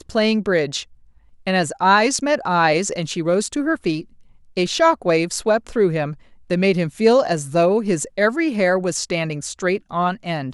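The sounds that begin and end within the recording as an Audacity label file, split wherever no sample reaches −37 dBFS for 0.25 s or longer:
1.470000	4.040000	sound
4.570000	6.140000	sound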